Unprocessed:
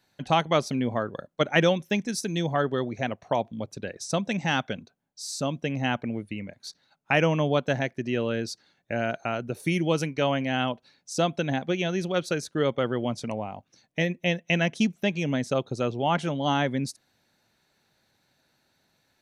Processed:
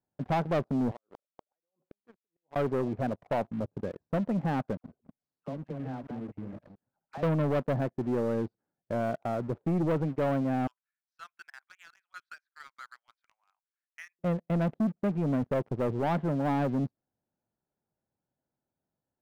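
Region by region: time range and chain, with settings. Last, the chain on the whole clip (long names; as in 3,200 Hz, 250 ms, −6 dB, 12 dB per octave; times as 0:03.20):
0:00.91–0:02.56: downward compressor 10 to 1, threshold −35 dBFS + high-pass filter 490 Hz + gate with flip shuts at −32 dBFS, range −34 dB
0:04.77–0:07.23: delay that plays each chunk backwards 137 ms, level −8 dB + downward compressor 2 to 1, threshold −43 dBFS + all-pass dispersion lows, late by 72 ms, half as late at 1,000 Hz
0:10.67–0:14.19: Butterworth high-pass 1,400 Hz + high-shelf EQ 3,400 Hz +12 dB
whole clip: Bessel low-pass filter 820 Hz, order 4; leveller curve on the samples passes 3; level −9 dB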